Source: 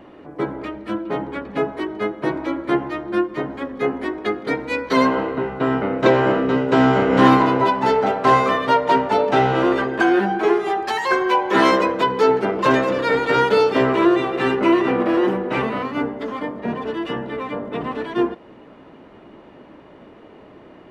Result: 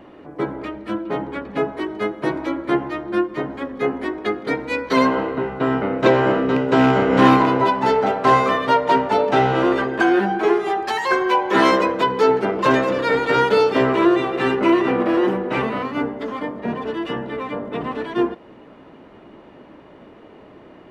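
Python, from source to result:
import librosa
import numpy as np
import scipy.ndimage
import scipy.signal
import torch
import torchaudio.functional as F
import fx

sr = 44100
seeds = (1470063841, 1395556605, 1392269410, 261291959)

y = fx.rattle_buzz(x, sr, strikes_db=-18.0, level_db=-18.0)
y = fx.high_shelf(y, sr, hz=4700.0, db=5.0, at=(1.84, 2.49))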